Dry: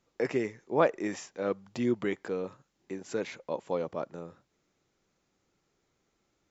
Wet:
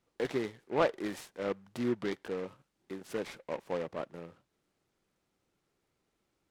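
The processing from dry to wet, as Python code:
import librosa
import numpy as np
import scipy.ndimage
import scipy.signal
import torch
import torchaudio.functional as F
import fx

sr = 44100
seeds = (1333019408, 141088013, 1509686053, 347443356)

y = fx.noise_mod_delay(x, sr, seeds[0], noise_hz=1300.0, depth_ms=0.057)
y = y * 10.0 ** (-3.5 / 20.0)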